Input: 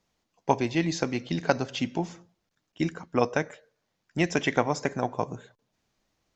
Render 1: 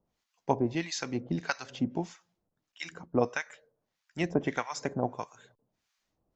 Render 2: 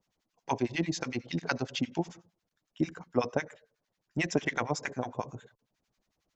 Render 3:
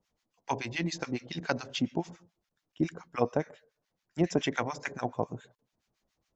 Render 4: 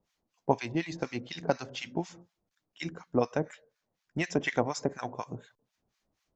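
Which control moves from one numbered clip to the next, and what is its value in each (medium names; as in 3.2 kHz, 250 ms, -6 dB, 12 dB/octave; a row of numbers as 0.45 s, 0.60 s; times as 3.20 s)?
harmonic tremolo, rate: 1.6 Hz, 11 Hz, 7.1 Hz, 4.1 Hz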